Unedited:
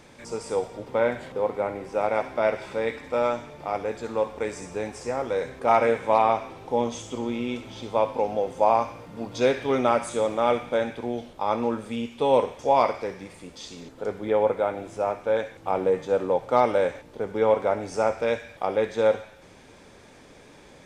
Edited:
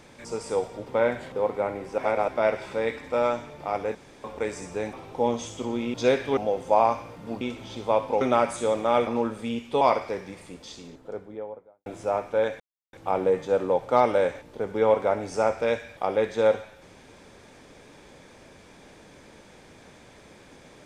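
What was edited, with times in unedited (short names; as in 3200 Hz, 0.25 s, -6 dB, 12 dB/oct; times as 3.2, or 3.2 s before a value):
1.98–2.28 reverse
3.95–4.24 room tone
4.93–6.46 cut
7.47–8.27 swap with 9.31–9.74
10.6–11.54 cut
12.28–12.74 cut
13.37–14.79 studio fade out
15.53 insert silence 0.33 s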